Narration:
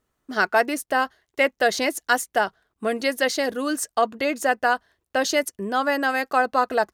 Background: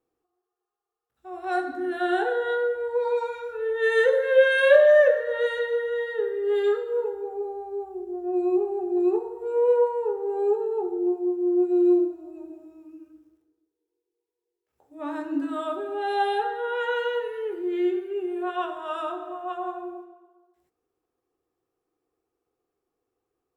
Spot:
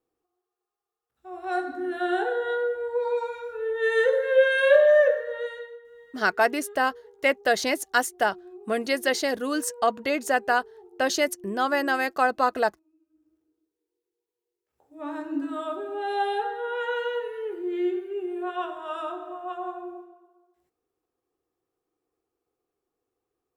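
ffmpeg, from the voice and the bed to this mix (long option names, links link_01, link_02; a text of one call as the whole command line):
ffmpeg -i stem1.wav -i stem2.wav -filter_complex "[0:a]adelay=5850,volume=-2dB[link_01];[1:a]volume=18.5dB,afade=type=out:start_time=5.02:duration=0.78:silence=0.0944061,afade=type=in:start_time=13.09:duration=0.49:silence=0.1[link_02];[link_01][link_02]amix=inputs=2:normalize=0" out.wav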